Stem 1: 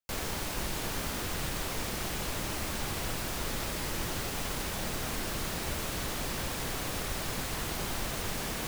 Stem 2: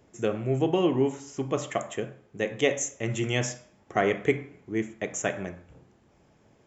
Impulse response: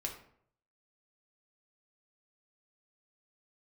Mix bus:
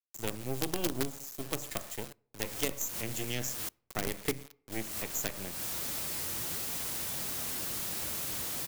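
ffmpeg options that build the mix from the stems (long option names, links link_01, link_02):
-filter_complex "[0:a]highpass=66,flanger=delay=2.9:depth=9:regen=70:speed=1.4:shape=triangular,adelay=2350,volume=-4.5dB,asplit=3[link_01][link_02][link_03];[link_01]atrim=end=3.69,asetpts=PTS-STARTPTS,afade=type=out:start_time=3.686:duration=0.004:curve=hsin[link_04];[link_02]atrim=start=3.69:end=4.72,asetpts=PTS-STARTPTS,volume=0[link_05];[link_03]atrim=start=4.72,asetpts=PTS-STARTPTS,afade=type=in:duration=0.004:curve=hsin[link_06];[link_04][link_05][link_06]concat=n=3:v=0:a=1,asplit=2[link_07][link_08];[link_08]volume=-22.5dB[link_09];[1:a]acrusher=bits=4:dc=4:mix=0:aa=0.000001,volume=-7dB,asplit=3[link_10][link_11][link_12];[link_11]volume=-20.5dB[link_13];[link_12]apad=whole_len=486158[link_14];[link_07][link_14]sidechaincompress=threshold=-49dB:ratio=3:attack=16:release=136[link_15];[2:a]atrim=start_sample=2205[link_16];[link_09][link_13]amix=inputs=2:normalize=0[link_17];[link_17][link_16]afir=irnorm=-1:irlink=0[link_18];[link_15][link_10][link_18]amix=inputs=3:normalize=0,acrossover=split=350[link_19][link_20];[link_20]acompressor=threshold=-36dB:ratio=6[link_21];[link_19][link_21]amix=inputs=2:normalize=0,crystalizer=i=2.5:c=0"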